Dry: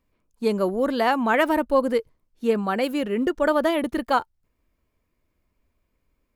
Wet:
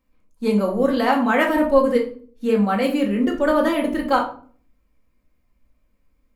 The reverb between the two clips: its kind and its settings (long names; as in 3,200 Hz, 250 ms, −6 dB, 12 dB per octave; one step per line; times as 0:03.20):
rectangular room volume 390 cubic metres, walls furnished, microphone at 2.1 metres
level −1 dB